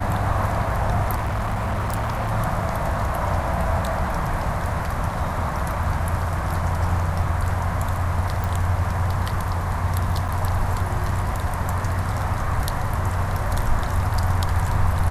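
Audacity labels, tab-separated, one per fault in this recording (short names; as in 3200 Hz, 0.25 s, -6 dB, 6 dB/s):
1.150000	2.320000	clipped -20.5 dBFS
8.440000	8.440000	pop
10.280000	10.290000	gap 6.2 ms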